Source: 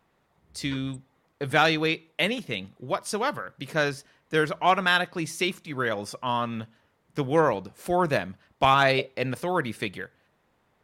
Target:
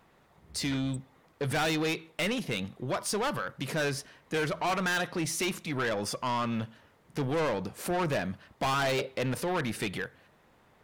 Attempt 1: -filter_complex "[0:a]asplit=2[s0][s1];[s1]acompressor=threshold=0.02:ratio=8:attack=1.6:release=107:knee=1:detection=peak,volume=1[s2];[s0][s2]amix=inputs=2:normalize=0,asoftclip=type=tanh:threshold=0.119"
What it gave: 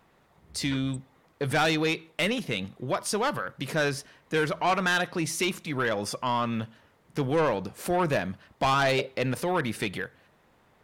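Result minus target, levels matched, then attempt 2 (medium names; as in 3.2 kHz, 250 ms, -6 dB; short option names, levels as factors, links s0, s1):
saturation: distortion -5 dB
-filter_complex "[0:a]asplit=2[s0][s1];[s1]acompressor=threshold=0.02:ratio=8:attack=1.6:release=107:knee=1:detection=peak,volume=1[s2];[s0][s2]amix=inputs=2:normalize=0,asoftclip=type=tanh:threshold=0.0531"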